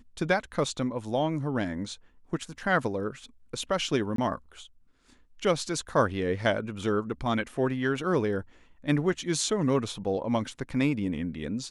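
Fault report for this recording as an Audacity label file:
4.160000	4.180000	gap 23 ms

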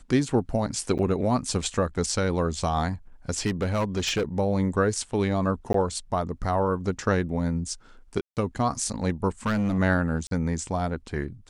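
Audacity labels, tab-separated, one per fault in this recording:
0.980000	0.990000	gap 8.6 ms
3.450000	4.230000	clipped -20.5 dBFS
5.730000	5.740000	gap 13 ms
8.210000	8.370000	gap 0.158 s
9.460000	9.790000	clipped -21.5 dBFS
10.270000	10.310000	gap 42 ms

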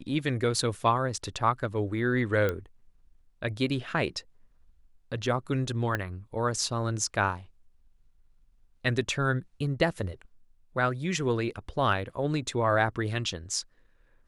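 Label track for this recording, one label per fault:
2.490000	2.490000	pop -16 dBFS
5.950000	5.950000	pop -15 dBFS

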